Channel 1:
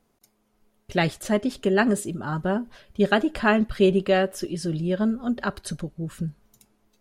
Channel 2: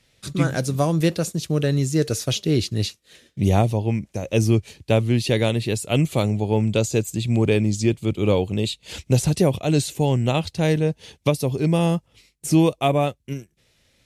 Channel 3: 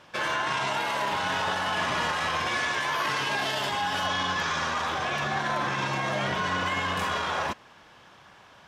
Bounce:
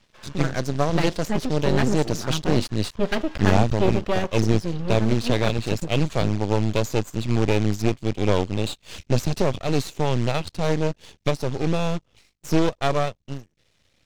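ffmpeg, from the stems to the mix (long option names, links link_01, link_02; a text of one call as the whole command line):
ffmpeg -i stem1.wav -i stem2.wav -i stem3.wav -filter_complex "[0:a]lowshelf=frequency=140:gain=9.5,volume=0.5dB[link_01];[1:a]acrusher=bits=4:mode=log:mix=0:aa=0.000001,volume=1dB,asplit=2[link_02][link_03];[2:a]volume=-17dB[link_04];[link_03]apad=whole_len=382683[link_05];[link_04][link_05]sidechaincompress=threshold=-28dB:ratio=8:attack=5.5:release=286[link_06];[link_01][link_02][link_06]amix=inputs=3:normalize=0,lowpass=frequency=6800:width=0.5412,lowpass=frequency=6800:width=1.3066,aeval=exprs='max(val(0),0)':channel_layout=same" out.wav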